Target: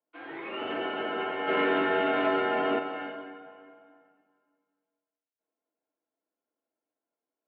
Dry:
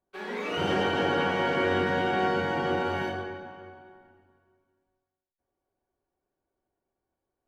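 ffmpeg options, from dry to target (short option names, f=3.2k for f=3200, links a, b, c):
-filter_complex "[0:a]asplit=3[a][b][c];[a]afade=t=out:st=1.47:d=0.02[d];[b]aeval=exprs='0.2*sin(PI/2*1.58*val(0)/0.2)':c=same,afade=t=in:st=1.47:d=0.02,afade=t=out:st=2.78:d=0.02[e];[c]afade=t=in:st=2.78:d=0.02[f];[d][e][f]amix=inputs=3:normalize=0,flanger=delay=6:depth=7.8:regen=-88:speed=0.46:shape=sinusoidal,highpass=f=380:t=q:w=0.5412,highpass=f=380:t=q:w=1.307,lowpass=f=3.3k:t=q:w=0.5176,lowpass=f=3.3k:t=q:w=0.7071,lowpass=f=3.3k:t=q:w=1.932,afreqshift=-86"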